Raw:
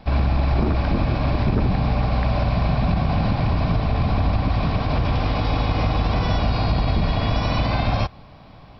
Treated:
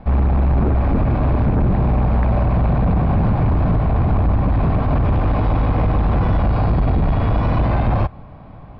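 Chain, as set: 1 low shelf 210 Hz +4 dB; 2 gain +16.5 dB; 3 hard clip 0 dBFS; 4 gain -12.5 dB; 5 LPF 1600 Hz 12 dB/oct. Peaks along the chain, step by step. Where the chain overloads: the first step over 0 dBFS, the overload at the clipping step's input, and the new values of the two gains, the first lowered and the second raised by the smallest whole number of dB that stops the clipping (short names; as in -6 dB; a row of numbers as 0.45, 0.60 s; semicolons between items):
-7.5, +9.0, 0.0, -12.5, -12.0 dBFS; step 2, 9.0 dB; step 2 +7.5 dB, step 4 -3.5 dB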